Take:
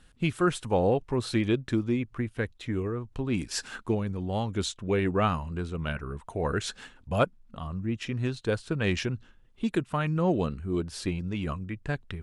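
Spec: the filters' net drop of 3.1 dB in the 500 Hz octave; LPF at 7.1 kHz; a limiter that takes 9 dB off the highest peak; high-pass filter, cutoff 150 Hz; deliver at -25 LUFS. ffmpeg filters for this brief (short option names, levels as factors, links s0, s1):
-af "highpass=150,lowpass=7100,equalizer=f=500:t=o:g=-4,volume=2.82,alimiter=limit=0.282:level=0:latency=1"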